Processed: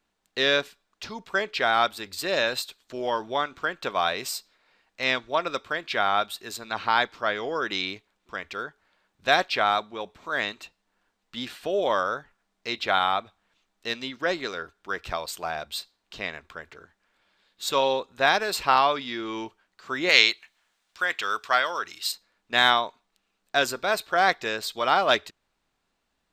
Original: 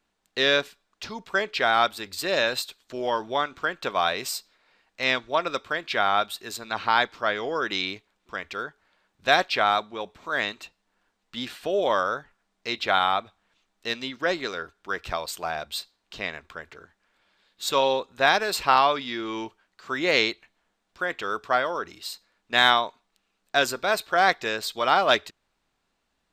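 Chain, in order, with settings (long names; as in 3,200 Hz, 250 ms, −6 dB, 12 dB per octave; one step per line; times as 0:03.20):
0:20.09–0:22.12: tilt shelving filter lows −8.5 dB, about 870 Hz
level −1 dB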